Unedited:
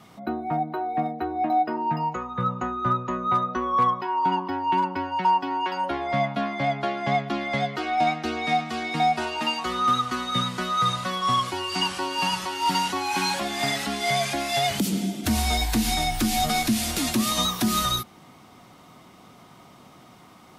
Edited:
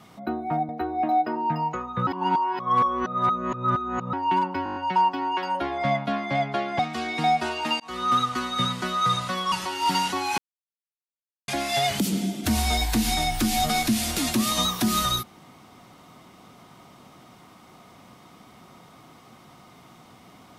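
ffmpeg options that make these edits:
-filter_complex "[0:a]asplit=15[s0][s1][s2][s3][s4][s5][s6][s7][s8][s9][s10][s11][s12][s13][s14];[s0]atrim=end=0.692[s15];[s1]atrim=start=1.098:end=2.482[s16];[s2]atrim=start=2.478:end=4.542,asetpts=PTS-STARTPTS,areverse[s17];[s3]atrim=start=4.538:end=5.072[s18];[s4]atrim=start=5.048:end=5.072[s19];[s5]atrim=start=5.048:end=5.072[s20];[s6]atrim=start=5.048:end=5.072[s21];[s7]atrim=start=5.048:end=5.072[s22];[s8]atrim=start=5.048:end=5.072[s23];[s9]atrim=start=5.048:end=7.082[s24];[s10]atrim=start=8.548:end=9.56,asetpts=PTS-STARTPTS,afade=t=out:st=1.008:d=0.004:c=hsin[s25];[s11]atrim=start=9.56:end=11.282,asetpts=PTS-STARTPTS,afade=t=in:d=0.38:c=qsin[s26];[s12]atrim=start=12.318:end=13.18,asetpts=PTS-STARTPTS,afade=t=out:st=0.858:d=0.004:c=hsin[s27];[s13]atrim=start=13.18:end=14.28,asetpts=PTS-STARTPTS,volume=0[s28];[s14]atrim=start=14.28,asetpts=PTS-STARTPTS,afade=t=in:d=0.004:c=hsin[s29];[s15][s16]acrossfade=d=0.004:c1=hsin:c2=hsin[s30];[s30][s17]acrossfade=d=0.004:c1=hsin:c2=hsin[s31];[s31][s18]acrossfade=d=0.004:c1=hsin:c2=hsin[s32];[s32][s19]acrossfade=d=0.004:c1=hsin:c2=hsin[s33];[s33][s20]acrossfade=d=0.004:c1=hsin:c2=hsin[s34];[s34][s21]acrossfade=d=0.004:c1=hsin:c2=hsin[s35];[s35][s22]acrossfade=d=0.004:c1=hsin:c2=hsin[s36];[s36][s23]acrossfade=d=0.004:c1=hsin:c2=hsin[s37];[s37][s24]acrossfade=d=0.004:c1=hsin:c2=hsin[s38];[s25][s26]concat=n=2:v=0:a=1[s39];[s38][s39]acrossfade=d=0.004:c1=hsin:c2=hsin[s40];[s27][s28][s29]concat=n=3:v=0:a=1[s41];[s40][s41]acrossfade=d=0.004:c1=hsin:c2=hsin"

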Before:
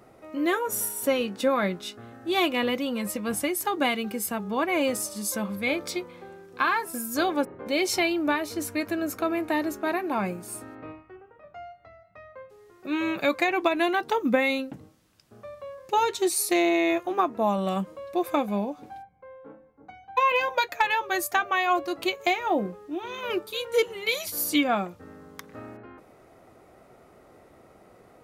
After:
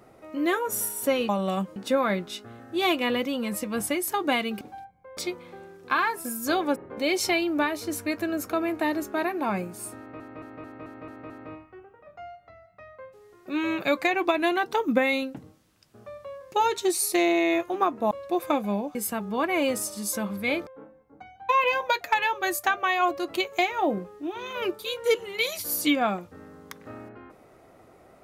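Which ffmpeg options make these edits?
-filter_complex "[0:a]asplit=14[s0][s1][s2][s3][s4][s5][s6][s7][s8][s9][s10][s11][s12][s13];[s0]atrim=end=1.292[s14];[s1]atrim=start=17.478:end=17.952[s15];[s2]atrim=start=1.288:end=4.142[s16];[s3]atrim=start=18.788:end=19.352[s17];[s4]atrim=start=5.858:end=10.892[s18];[s5]atrim=start=10.668:end=10.892[s19];[s6]atrim=start=10.668:end=10.892[s20];[s7]atrim=start=10.668:end=10.892[s21];[s8]atrim=start=10.668:end=10.892[s22];[s9]atrim=start=10.668:end=10.892[s23];[s10]atrim=start=10.668:end=17.482[s24];[s11]atrim=start=17.948:end=18.792[s25];[s12]atrim=start=4.138:end=5.862[s26];[s13]atrim=start=19.348[s27];[s14][s15]acrossfade=d=0.004:c1=hsin:c2=hsin[s28];[s28][s16]acrossfade=d=0.004:c1=hsin:c2=hsin[s29];[s29][s17]acrossfade=d=0.004:c1=hsin:c2=hsin[s30];[s30][s18]acrossfade=d=0.004:c1=hsin:c2=hsin[s31];[s31][s19]acrossfade=d=0.004:c1=hsin:c2=hsin[s32];[s32][s20]acrossfade=d=0.004:c1=hsin:c2=hsin[s33];[s33][s21]acrossfade=d=0.004:c1=hsin:c2=hsin[s34];[s34][s22]acrossfade=d=0.004:c1=hsin:c2=hsin[s35];[s35][s23]acrossfade=d=0.004:c1=hsin:c2=hsin[s36];[s36][s24]acrossfade=d=0.004:c1=hsin:c2=hsin[s37];[s37][s25]acrossfade=d=0.004:c1=hsin:c2=hsin[s38];[s38][s26]acrossfade=d=0.004:c1=hsin:c2=hsin[s39];[s39][s27]acrossfade=d=0.004:c1=hsin:c2=hsin"

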